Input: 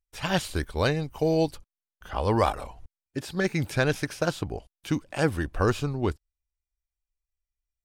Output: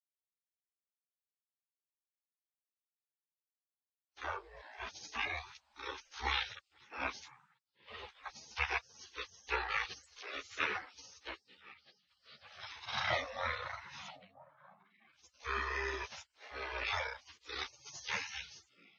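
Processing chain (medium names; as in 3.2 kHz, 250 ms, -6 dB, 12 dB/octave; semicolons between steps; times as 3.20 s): reverse the whole clip; expander -39 dBFS; high-pass 350 Hz 24 dB/octave; on a send: repeats whose band climbs or falls 407 ms, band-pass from 1.1 kHz, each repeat 1.4 oct, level -11 dB; on the sum: wide varispeed 0.413×; spectral gate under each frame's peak -25 dB weak; three-phase chorus; trim +11 dB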